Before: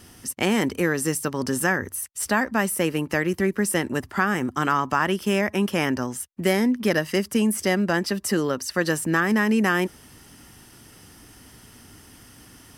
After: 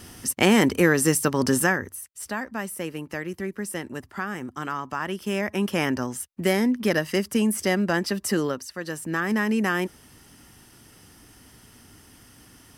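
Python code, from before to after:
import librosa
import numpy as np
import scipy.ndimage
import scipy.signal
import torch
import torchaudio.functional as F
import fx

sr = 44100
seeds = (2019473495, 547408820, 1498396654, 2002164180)

y = fx.gain(x, sr, db=fx.line((1.54, 4.0), (2.05, -8.5), (4.9, -8.5), (5.75, -1.0), (8.46, -1.0), (8.76, -11.0), (9.32, -3.0)))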